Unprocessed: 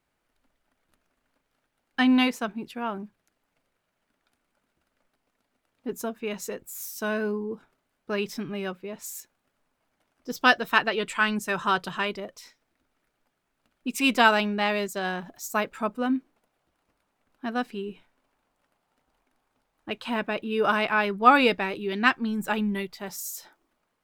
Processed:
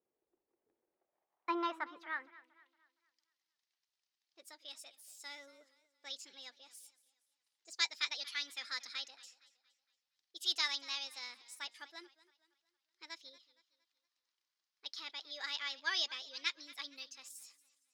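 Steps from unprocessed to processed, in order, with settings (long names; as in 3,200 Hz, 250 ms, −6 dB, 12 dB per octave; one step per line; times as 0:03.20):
change of speed 1.34×
band-pass filter sweep 420 Hz → 5,000 Hz, 0:00.80–0:03.01
feedback echo with a swinging delay time 232 ms, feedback 41%, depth 92 cents, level −19 dB
level −3 dB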